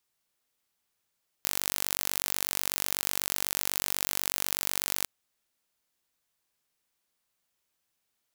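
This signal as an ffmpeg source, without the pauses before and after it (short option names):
-f lavfi -i "aevalsrc='0.794*eq(mod(n,917),0)':d=3.61:s=44100"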